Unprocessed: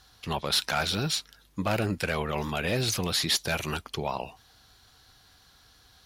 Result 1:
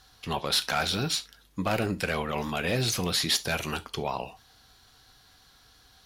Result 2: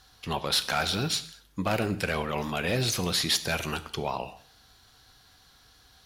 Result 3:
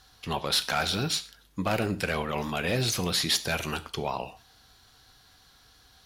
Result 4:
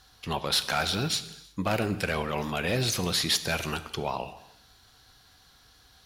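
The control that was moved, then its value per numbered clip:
reverb whose tail is shaped and stops, gate: 100, 250, 160, 390 milliseconds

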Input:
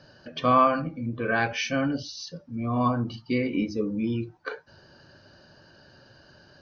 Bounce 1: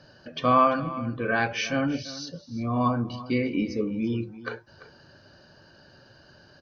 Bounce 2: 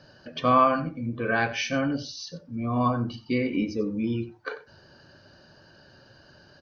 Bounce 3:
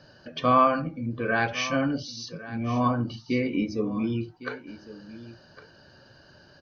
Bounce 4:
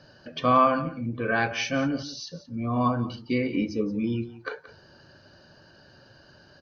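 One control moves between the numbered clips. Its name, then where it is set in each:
single-tap delay, delay time: 340, 91, 1,107, 176 milliseconds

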